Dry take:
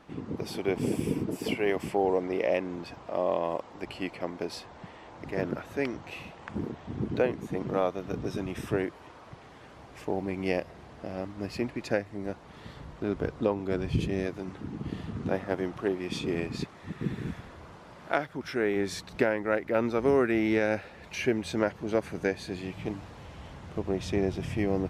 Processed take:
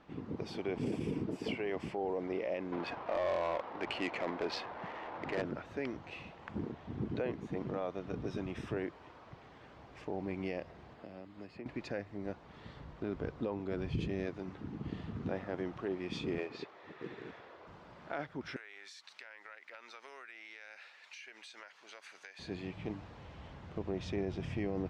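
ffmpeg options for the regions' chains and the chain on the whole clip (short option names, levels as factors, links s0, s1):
-filter_complex "[0:a]asettb=1/sr,asplit=3[s0][s1][s2];[s0]atrim=end=2.724[s3];[s1]atrim=start=2.72:end=5.42,asetpts=PTS-STARTPTS,afade=t=in:d=0.004:c=qsin,afade=t=out:st=2.696:d=0.004:c=qsin,asplit=2[s4][s5];[s5]highpass=f=720:p=1,volume=8.91,asoftclip=type=tanh:threshold=0.2[s6];[s4][s6]amix=inputs=2:normalize=0,lowpass=f=7700:p=1,volume=0.501,adynamicsmooth=sensitivity=4:basefreq=1600[s7];[s2]atrim=start=5.416[s8];[s3][s7]acrossfade=d=0.004:c1=hsin:c2=qsin[s9];[s9][s8]acrossfade=d=0.004:c1=qsin:c2=hsin,asettb=1/sr,asplit=3[s10][s11][s12];[s10]atrim=end=10.944[s13];[s11]atrim=start=10.94:end=11.66,asetpts=PTS-STARTPTS,afade=t=in:d=0.004:c=qsin,afade=t=out:st=0.716:d=0.004:c=qsin,highpass=f=210:p=1,bandreject=f=5800:w=5.6,acrossover=split=340|2100[s14][s15][s16];[s14]acompressor=threshold=0.00631:ratio=4[s17];[s15]acompressor=threshold=0.00501:ratio=4[s18];[s16]acompressor=threshold=0.00112:ratio=4[s19];[s17][s18][s19]amix=inputs=3:normalize=0[s20];[s12]atrim=start=11.656[s21];[s13][s20]acrossfade=d=0.004:c1=hsin:c2=qsin[s22];[s22][s21]acrossfade=d=0.004:c1=qsin:c2=hsin,asettb=1/sr,asplit=3[s23][s24][s25];[s23]atrim=end=16.384[s26];[s24]atrim=start=16.38:end=17.67,asetpts=PTS-STARTPTS,afade=t=in:d=0.004:c=qsin,afade=t=out:st=1.286:d=0.004:c=qsin,lowshelf=f=290:t=q:w=1.5:g=-12,acrusher=bits=5:mode=log:mix=0:aa=0.000001,highpass=110,lowpass=5200[s27];[s25]atrim=start=17.666[s28];[s26][s27]acrossfade=d=0.004:c1=hsin:c2=qsin[s29];[s29][s28]acrossfade=d=0.004:c1=qsin:c2=hsin,asettb=1/sr,asplit=3[s30][s31][s32];[s30]atrim=end=18.564[s33];[s31]atrim=start=18.56:end=22.39,asetpts=PTS-STARTPTS,afade=t=in:d=0.004:c=qsin,afade=t=out:st=3.826:d=0.004:c=qsin,highpass=1400,highshelf=f=4300:g=9,acompressor=threshold=0.01:ratio=12:attack=3.2:release=140:knee=1:detection=peak[s34];[s32]atrim=start=22.386[s35];[s33][s34]acrossfade=d=0.004:c1=hsin:c2=qsin[s36];[s36][s35]acrossfade=d=0.004:c1=qsin:c2=hsin,lowpass=4900,alimiter=limit=0.0891:level=0:latency=1:release=16,volume=0.531"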